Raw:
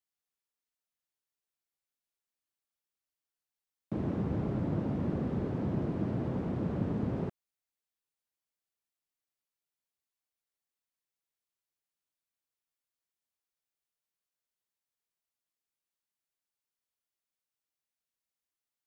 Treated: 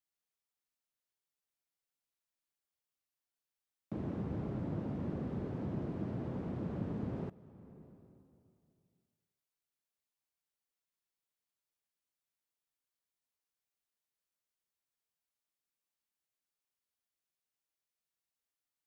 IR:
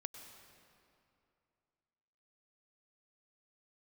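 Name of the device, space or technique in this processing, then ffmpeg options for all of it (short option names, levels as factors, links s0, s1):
ducked reverb: -filter_complex "[0:a]asplit=3[s0][s1][s2];[1:a]atrim=start_sample=2205[s3];[s1][s3]afir=irnorm=-1:irlink=0[s4];[s2]apad=whole_len=832123[s5];[s4][s5]sidechaincompress=threshold=0.00398:ratio=3:attack=29:release=439,volume=1.41[s6];[s0][s6]amix=inputs=2:normalize=0,volume=0.422"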